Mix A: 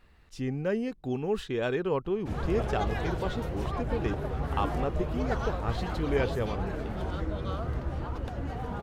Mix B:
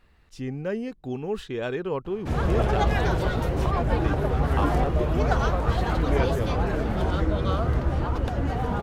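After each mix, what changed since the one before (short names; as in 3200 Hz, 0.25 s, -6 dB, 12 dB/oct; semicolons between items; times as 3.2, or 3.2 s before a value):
background +8.5 dB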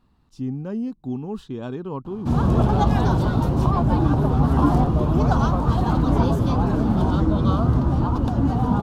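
speech -5.5 dB; master: add graphic EQ 125/250/500/1000/2000/4000 Hz +7/+11/-5/+9/-12/+3 dB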